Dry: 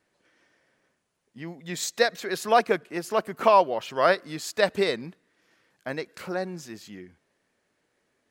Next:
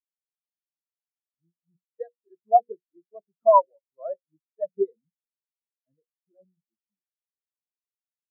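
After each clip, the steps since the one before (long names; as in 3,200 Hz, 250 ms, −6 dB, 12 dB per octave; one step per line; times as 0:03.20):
low-shelf EQ 220 Hz +12 dB
mains-hum notches 60/120/180/240/300/360/420/480/540 Hz
every bin expanded away from the loudest bin 4 to 1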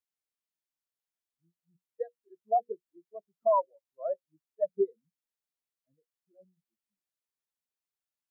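brickwall limiter −18 dBFS, peak gain reduction 12 dB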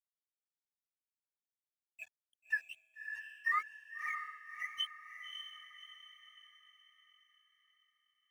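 frequency axis turned over on the octave scale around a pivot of 1,100 Hz
dead-zone distortion −52 dBFS
feedback delay with all-pass diffusion 590 ms, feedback 46%, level −6.5 dB
level −4.5 dB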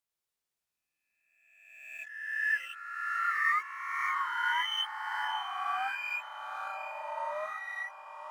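peak hold with a rise ahead of every peak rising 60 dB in 1.31 s
delay with pitch and tempo change per echo 93 ms, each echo −4 semitones, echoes 3
level +1.5 dB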